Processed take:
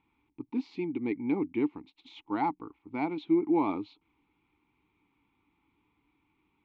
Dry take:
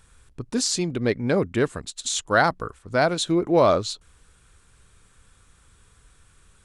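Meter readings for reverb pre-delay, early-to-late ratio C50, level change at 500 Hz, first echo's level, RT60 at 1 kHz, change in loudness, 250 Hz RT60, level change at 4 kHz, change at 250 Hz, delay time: no reverb, no reverb, -13.0 dB, no echo, no reverb, -8.5 dB, no reverb, -24.0 dB, -3.0 dB, no echo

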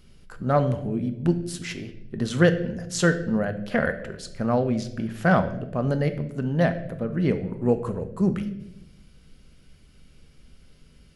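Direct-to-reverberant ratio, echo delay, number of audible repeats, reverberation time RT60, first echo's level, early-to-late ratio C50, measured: 8.0 dB, no echo, no echo, 0.90 s, no echo, 12.0 dB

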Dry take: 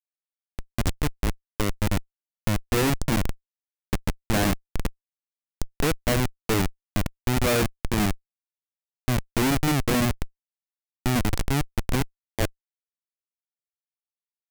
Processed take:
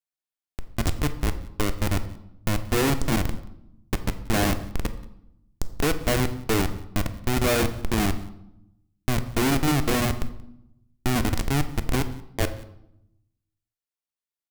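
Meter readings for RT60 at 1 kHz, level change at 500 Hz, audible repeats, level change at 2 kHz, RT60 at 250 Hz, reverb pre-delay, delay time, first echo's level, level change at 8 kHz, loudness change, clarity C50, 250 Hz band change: 0.75 s, +0.5 dB, 1, +0.5 dB, 1.2 s, 3 ms, 180 ms, -24.5 dB, +0.5 dB, +0.5 dB, 13.0 dB, 0.0 dB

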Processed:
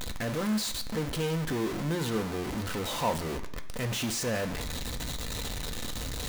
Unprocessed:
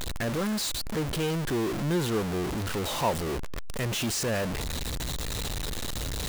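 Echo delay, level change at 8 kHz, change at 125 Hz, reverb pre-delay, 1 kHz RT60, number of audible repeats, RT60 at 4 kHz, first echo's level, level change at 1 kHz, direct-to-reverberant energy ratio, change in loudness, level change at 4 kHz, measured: no echo, -2.5 dB, -2.5 dB, 3 ms, 1.0 s, no echo, 0.90 s, no echo, -2.0 dB, 5.5 dB, -2.0 dB, -2.0 dB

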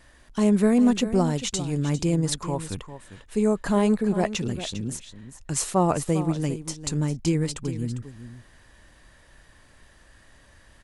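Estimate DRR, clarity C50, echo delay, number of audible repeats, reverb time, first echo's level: no reverb, no reverb, 401 ms, 1, no reverb, -12.5 dB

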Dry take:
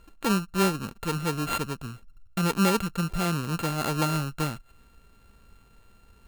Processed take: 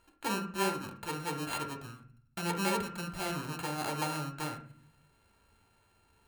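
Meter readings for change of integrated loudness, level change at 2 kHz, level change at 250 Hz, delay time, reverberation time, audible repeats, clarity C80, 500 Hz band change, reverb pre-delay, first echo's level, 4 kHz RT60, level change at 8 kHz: -8.0 dB, -5.0 dB, -10.5 dB, no echo, 0.50 s, no echo, 14.5 dB, -7.0 dB, 3 ms, no echo, 0.40 s, -6.0 dB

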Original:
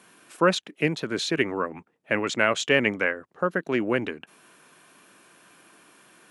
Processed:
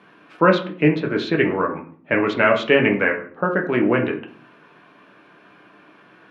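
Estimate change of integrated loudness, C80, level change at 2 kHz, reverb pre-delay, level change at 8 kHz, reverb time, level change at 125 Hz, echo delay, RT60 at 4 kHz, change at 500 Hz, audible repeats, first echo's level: +6.0 dB, 14.5 dB, +4.5 dB, 7 ms, under -15 dB, 0.50 s, +8.0 dB, no echo, 0.35 s, +6.5 dB, no echo, no echo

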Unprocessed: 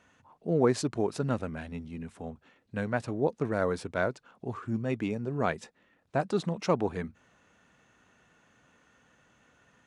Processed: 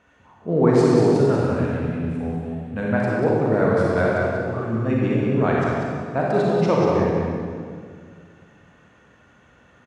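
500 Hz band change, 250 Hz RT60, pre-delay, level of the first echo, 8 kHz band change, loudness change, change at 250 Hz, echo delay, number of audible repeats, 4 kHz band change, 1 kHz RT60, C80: +11.5 dB, 2.5 s, 32 ms, -4.5 dB, no reading, +11.0 dB, +11.5 dB, 190 ms, 1, +5.0 dB, 1.9 s, -2.0 dB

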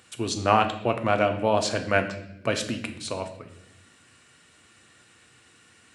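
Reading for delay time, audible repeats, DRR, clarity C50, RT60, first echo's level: no echo, no echo, 5.5 dB, 10.5 dB, 0.85 s, no echo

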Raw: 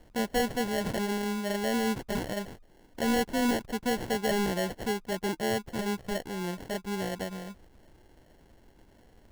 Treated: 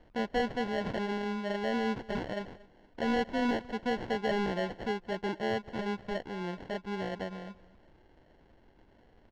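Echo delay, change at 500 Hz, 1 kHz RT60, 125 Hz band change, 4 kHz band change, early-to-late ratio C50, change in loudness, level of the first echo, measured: 232 ms, -2.0 dB, no reverb, -3.5 dB, -5.0 dB, no reverb, -3.0 dB, -21.5 dB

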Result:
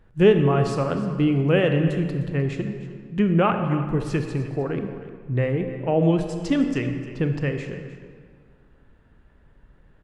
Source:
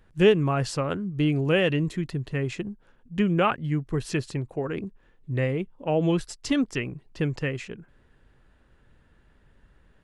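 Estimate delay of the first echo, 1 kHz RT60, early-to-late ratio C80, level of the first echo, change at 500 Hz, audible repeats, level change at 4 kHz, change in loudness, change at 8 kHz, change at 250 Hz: 306 ms, 1.8 s, 7.5 dB, -16.0 dB, +3.5 dB, 1, -2.5 dB, +3.5 dB, no reading, +4.0 dB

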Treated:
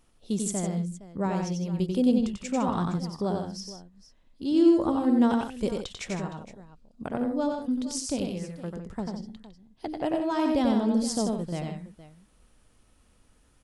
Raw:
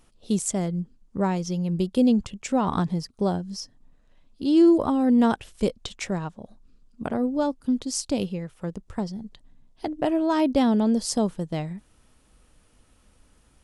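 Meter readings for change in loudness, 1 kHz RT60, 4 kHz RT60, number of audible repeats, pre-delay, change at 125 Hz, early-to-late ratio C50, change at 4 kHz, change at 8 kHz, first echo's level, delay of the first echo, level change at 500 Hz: -3.0 dB, no reverb, no reverb, 3, no reverb, -3.0 dB, no reverb, -3.0 dB, -3.0 dB, -3.5 dB, 92 ms, -3.0 dB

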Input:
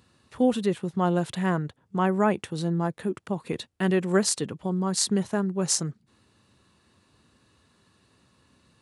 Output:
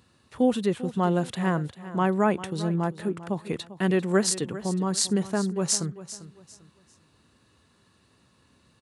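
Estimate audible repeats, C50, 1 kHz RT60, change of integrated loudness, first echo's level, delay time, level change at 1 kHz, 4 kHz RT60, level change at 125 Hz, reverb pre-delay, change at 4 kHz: 2, no reverb, no reverb, 0.0 dB, -15.0 dB, 396 ms, 0.0 dB, no reverb, 0.0 dB, no reverb, 0.0 dB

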